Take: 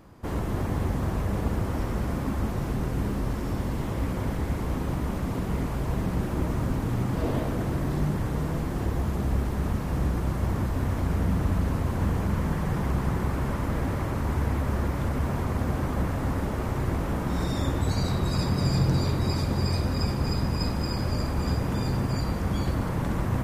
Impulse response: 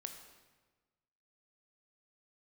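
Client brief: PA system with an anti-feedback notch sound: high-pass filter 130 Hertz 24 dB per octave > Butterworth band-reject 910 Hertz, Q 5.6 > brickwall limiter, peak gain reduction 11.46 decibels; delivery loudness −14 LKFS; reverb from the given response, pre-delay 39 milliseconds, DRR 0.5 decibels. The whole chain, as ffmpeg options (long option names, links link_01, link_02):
-filter_complex "[0:a]asplit=2[link_01][link_02];[1:a]atrim=start_sample=2205,adelay=39[link_03];[link_02][link_03]afir=irnorm=-1:irlink=0,volume=3dB[link_04];[link_01][link_04]amix=inputs=2:normalize=0,highpass=frequency=130:width=0.5412,highpass=frequency=130:width=1.3066,asuperstop=centerf=910:order=8:qfactor=5.6,volume=18dB,alimiter=limit=-5.5dB:level=0:latency=1"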